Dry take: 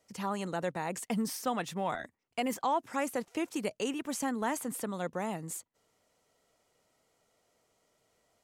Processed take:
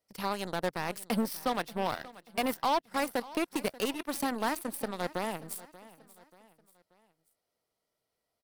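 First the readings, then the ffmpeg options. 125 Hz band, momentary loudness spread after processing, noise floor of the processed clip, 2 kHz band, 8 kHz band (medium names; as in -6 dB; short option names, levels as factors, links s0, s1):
-1.0 dB, 7 LU, -85 dBFS, +3.0 dB, -2.0 dB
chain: -filter_complex "[0:a]asplit=2[s0][s1];[s1]acompressor=threshold=0.00708:ratio=6,volume=0.891[s2];[s0][s2]amix=inputs=2:normalize=0,aeval=exprs='0.119*(cos(1*acos(clip(val(0)/0.119,-1,1)))-cos(1*PI/2))+0.00237*(cos(6*acos(clip(val(0)/0.119,-1,1)))-cos(6*PI/2))+0.015*(cos(7*acos(clip(val(0)/0.119,-1,1)))-cos(7*PI/2))':c=same,asoftclip=type=hard:threshold=0.0794,aexciter=amount=1.2:drive=4.4:freq=3900,aecho=1:1:584|1168|1752:0.112|0.0494|0.0217,volume=1.12"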